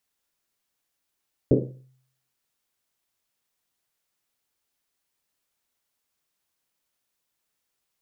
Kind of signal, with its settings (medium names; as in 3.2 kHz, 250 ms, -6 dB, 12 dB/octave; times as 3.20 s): Risset drum, pitch 130 Hz, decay 0.67 s, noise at 350 Hz, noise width 330 Hz, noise 65%